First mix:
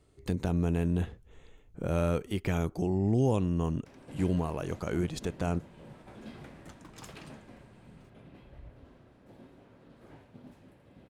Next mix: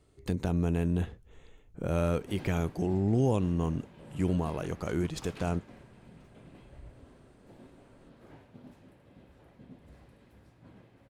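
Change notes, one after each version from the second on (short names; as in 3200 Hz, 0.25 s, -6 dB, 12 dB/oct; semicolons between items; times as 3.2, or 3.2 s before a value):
background: entry -1.80 s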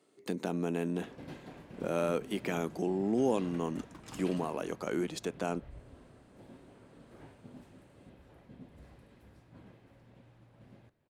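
speech: add HPF 210 Hz 24 dB/oct; background: entry -1.10 s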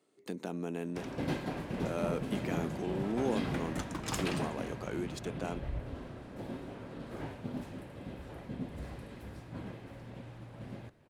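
speech -4.5 dB; background +12.0 dB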